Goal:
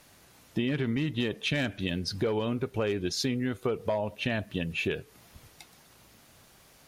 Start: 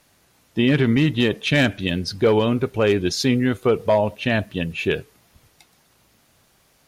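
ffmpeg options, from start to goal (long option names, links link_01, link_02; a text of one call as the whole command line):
ffmpeg -i in.wav -af "acompressor=threshold=-31dB:ratio=4,volume=2dB" out.wav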